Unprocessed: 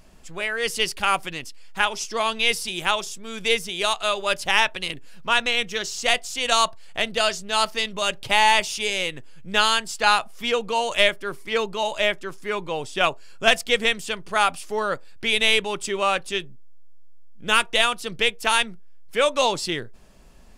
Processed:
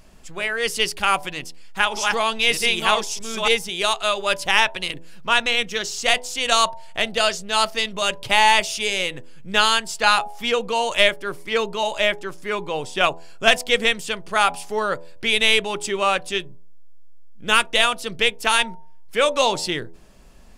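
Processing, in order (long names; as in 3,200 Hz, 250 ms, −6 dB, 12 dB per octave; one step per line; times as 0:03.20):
0:01.34–0:03.48: delay that plays each chunk backwards 617 ms, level −2 dB
hum removal 82.88 Hz, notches 12
level +2 dB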